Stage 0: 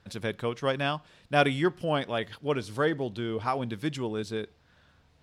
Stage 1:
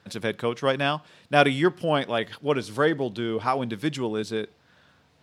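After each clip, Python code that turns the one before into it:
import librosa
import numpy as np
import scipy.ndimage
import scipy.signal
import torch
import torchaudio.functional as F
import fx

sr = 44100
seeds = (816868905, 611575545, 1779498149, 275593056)

y = scipy.signal.sosfilt(scipy.signal.butter(2, 130.0, 'highpass', fs=sr, output='sos'), x)
y = y * librosa.db_to_amplitude(4.5)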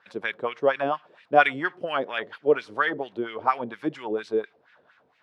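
y = fx.wah_lfo(x, sr, hz=4.3, low_hz=400.0, high_hz=2300.0, q=2.3)
y = y * librosa.db_to_amplitude(6.5)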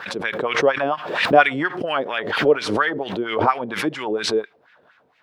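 y = fx.pre_swell(x, sr, db_per_s=67.0)
y = y * librosa.db_to_amplitude(3.5)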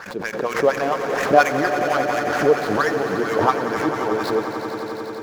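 y = scipy.ndimage.median_filter(x, 15, mode='constant')
y = fx.echo_swell(y, sr, ms=89, loudest=5, wet_db=-12)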